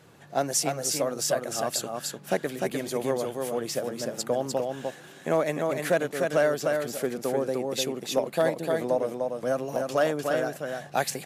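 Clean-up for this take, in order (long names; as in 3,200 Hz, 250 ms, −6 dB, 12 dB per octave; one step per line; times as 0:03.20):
clipped peaks rebuilt −14 dBFS
echo removal 301 ms −4 dB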